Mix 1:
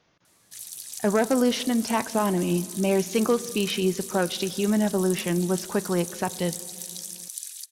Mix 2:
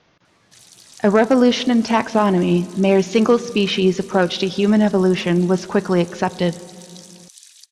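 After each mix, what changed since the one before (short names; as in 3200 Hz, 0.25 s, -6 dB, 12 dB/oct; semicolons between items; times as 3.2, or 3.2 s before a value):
speech +8.0 dB; master: add LPF 5500 Hz 12 dB/oct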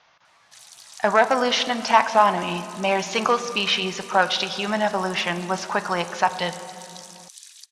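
speech: send +8.0 dB; master: add resonant low shelf 540 Hz -13.5 dB, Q 1.5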